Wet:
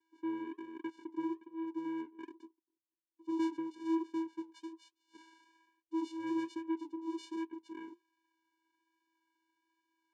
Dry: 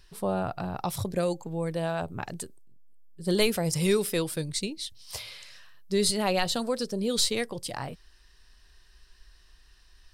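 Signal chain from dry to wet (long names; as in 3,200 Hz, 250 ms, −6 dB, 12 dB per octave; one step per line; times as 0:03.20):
three-way crossover with the lows and the highs turned down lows −23 dB, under 300 Hz, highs −18 dB, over 3,400 Hz
channel vocoder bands 4, square 326 Hz
flanger 1.2 Hz, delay 2.1 ms, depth 6 ms, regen −69%
level −1.5 dB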